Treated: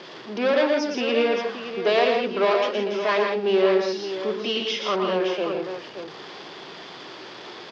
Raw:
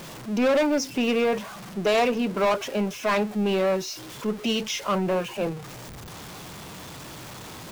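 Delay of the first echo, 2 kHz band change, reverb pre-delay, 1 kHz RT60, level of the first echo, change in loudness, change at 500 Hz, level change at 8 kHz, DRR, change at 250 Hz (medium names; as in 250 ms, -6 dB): 116 ms, +3.0 dB, no reverb, no reverb, -5.0 dB, +2.0 dB, +3.5 dB, no reading, no reverb, -2.5 dB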